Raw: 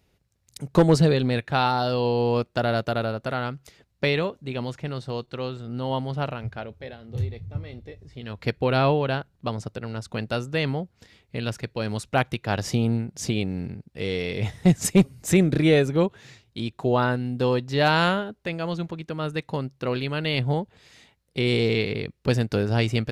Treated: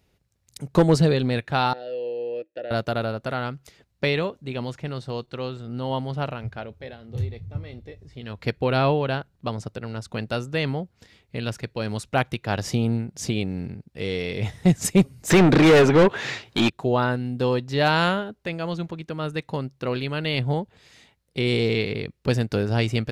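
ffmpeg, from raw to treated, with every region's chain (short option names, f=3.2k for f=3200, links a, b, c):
-filter_complex "[0:a]asettb=1/sr,asplit=3[a][b][c];[a]atrim=end=1.734[d];[b]atrim=start=1.73:end=2.71,asetpts=PTS-STARTPTS,afade=t=in:d=0.004:c=qsin,afade=t=out:st=0.976:d=0.004:c=qsin,asplit=3[e][f][g];[e]bandpass=f=530:t=q:w=8,volume=0dB[h];[f]bandpass=f=1.84k:t=q:w=8,volume=-6dB[i];[g]bandpass=f=2.48k:t=q:w=8,volume=-9dB[j];[h][i][j]amix=inputs=3:normalize=0,equalizer=f=320:t=o:w=0.2:g=14[k];[c]atrim=start=2.706[l];[d][k]acrossfade=d=0.004:c1=hsin:c2=qsin[m];[m][l]acrossfade=d=0.004:c1=qsin:c2=hsin,asettb=1/sr,asplit=3[n][o][p];[n]atrim=end=15.304[q];[o]atrim=start=15.3:end=16.7,asetpts=PTS-STARTPTS,afade=t=in:d=0.004:c=qsin,afade=t=out:st=1.396:d=0.004:c=qsin,acrossover=split=6800[r][s];[s]acompressor=threshold=-60dB:ratio=4:attack=1:release=60[t];[r][t]amix=inputs=2:normalize=0,asplit=2[u][v];[v]highpass=f=720:p=1,volume=30dB,asoftclip=type=tanh:threshold=-7dB[w];[u][w]amix=inputs=2:normalize=0,lowpass=f=2k:p=1,volume=-6dB[x];[p]atrim=start=16.696[y];[q][x]acrossfade=d=0.004:c1=hsin:c2=qsin[z];[z][y]acrossfade=d=0.004:c1=qsin:c2=hsin"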